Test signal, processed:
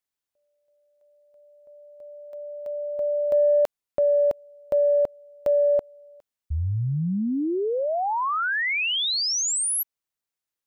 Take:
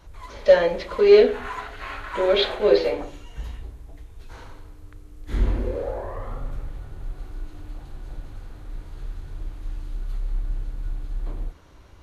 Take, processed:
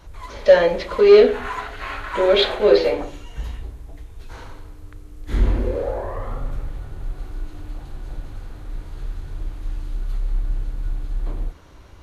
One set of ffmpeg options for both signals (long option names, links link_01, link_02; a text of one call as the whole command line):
ffmpeg -i in.wav -af "acontrast=29,volume=-1dB" out.wav